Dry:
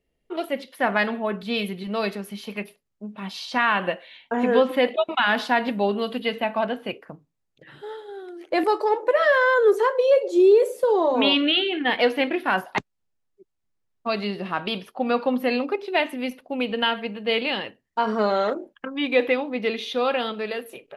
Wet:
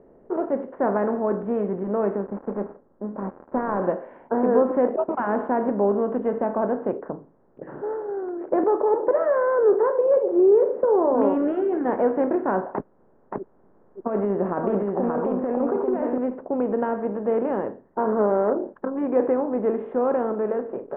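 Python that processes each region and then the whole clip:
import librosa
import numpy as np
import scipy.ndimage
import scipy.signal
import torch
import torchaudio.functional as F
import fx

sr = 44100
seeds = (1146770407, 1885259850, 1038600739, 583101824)

y = fx.chain(x, sr, fx.dead_time(dead_ms=0.15),
    fx.lowpass(hz=1700.0, slope=12),
    fx.comb(ms=3.7, depth=0.3), at=(2.26, 3.82))
y = fx.chain(y, sr, fx.over_compress(threshold_db=-27.0, ratio=-1.0),
    fx.echo_single(ms=576, db=-4.5), at=(12.74, 16.18))
y = fx.bin_compress(y, sr, power=0.6)
y = scipy.signal.sosfilt(scipy.signal.bessel(6, 790.0, 'lowpass', norm='mag', fs=sr, output='sos'), y)
y = y * librosa.db_to_amplitude(-1.5)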